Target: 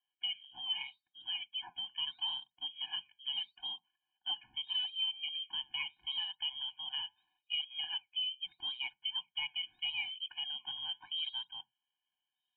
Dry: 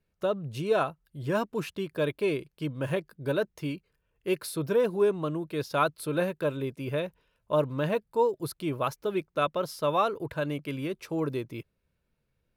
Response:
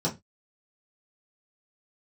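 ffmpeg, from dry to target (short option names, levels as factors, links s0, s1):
-filter_complex "[0:a]acompressor=threshold=0.0282:ratio=2.5,lowpass=f=3000:t=q:w=0.5098,lowpass=f=3000:t=q:w=0.6013,lowpass=f=3000:t=q:w=0.9,lowpass=f=3000:t=q:w=2.563,afreqshift=-3500,asplit=2[s0][s1];[1:a]atrim=start_sample=2205,afade=t=out:st=0.39:d=0.01,atrim=end_sample=17640[s2];[s1][s2]afir=irnorm=-1:irlink=0,volume=0.0447[s3];[s0][s3]amix=inputs=2:normalize=0,flanger=delay=1.3:depth=6.4:regen=-84:speed=0.78:shape=sinusoidal,afftfilt=real='re*eq(mod(floor(b*sr/1024/360),2),0)':imag='im*eq(mod(floor(b*sr/1024/360),2),0)':win_size=1024:overlap=0.75"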